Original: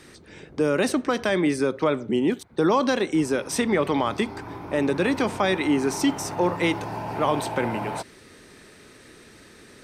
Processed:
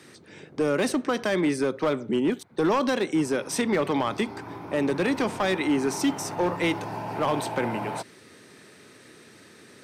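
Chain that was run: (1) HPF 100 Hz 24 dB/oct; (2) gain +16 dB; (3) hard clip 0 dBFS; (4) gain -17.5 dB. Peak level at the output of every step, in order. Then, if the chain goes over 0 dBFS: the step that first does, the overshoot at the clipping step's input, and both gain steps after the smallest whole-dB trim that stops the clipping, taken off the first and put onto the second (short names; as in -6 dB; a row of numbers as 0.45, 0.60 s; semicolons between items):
-9.5, +6.5, 0.0, -17.5 dBFS; step 2, 6.5 dB; step 2 +9 dB, step 4 -10.5 dB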